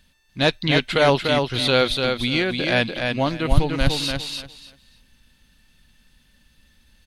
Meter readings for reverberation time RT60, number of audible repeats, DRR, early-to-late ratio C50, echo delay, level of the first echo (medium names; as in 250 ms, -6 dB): no reverb, 3, no reverb, no reverb, 294 ms, -4.5 dB